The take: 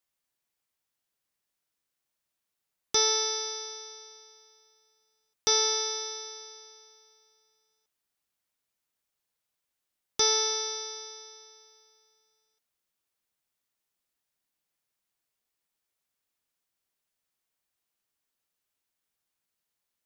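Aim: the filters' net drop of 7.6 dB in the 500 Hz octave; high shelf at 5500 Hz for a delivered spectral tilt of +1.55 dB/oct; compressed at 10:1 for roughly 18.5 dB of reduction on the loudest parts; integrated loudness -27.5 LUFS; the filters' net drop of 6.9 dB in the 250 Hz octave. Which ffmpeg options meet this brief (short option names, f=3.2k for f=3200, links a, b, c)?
-af "equalizer=f=250:t=o:g=-7,equalizer=f=500:t=o:g=-6.5,highshelf=f=5.5k:g=-4.5,acompressor=threshold=-42dB:ratio=10,volume=17.5dB"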